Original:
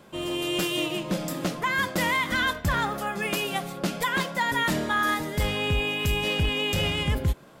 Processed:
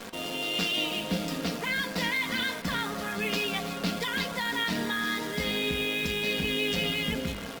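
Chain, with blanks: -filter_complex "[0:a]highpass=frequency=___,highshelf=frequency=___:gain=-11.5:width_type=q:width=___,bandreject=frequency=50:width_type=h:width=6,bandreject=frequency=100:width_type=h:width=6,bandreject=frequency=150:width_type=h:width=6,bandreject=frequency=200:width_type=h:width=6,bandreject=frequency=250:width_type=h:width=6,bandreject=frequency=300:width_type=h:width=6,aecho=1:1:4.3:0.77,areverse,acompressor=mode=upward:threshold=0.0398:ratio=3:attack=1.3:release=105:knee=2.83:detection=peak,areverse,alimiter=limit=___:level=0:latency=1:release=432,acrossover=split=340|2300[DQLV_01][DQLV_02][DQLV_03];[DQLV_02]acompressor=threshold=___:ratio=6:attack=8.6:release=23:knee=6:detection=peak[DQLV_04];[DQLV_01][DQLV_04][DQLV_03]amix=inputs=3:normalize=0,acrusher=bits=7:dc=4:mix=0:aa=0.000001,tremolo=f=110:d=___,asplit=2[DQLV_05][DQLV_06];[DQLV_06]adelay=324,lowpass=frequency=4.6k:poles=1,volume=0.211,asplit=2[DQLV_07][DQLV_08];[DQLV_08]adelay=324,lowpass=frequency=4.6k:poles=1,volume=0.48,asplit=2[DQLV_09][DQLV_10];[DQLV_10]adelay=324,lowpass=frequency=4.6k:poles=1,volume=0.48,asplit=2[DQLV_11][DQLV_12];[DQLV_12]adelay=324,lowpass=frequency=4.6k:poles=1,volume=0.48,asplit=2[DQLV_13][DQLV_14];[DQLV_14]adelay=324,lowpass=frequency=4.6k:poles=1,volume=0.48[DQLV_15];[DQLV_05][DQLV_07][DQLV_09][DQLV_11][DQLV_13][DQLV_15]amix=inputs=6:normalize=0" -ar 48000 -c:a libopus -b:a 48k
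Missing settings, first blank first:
140, 6.7k, 1.5, 0.2, 0.0178, 0.4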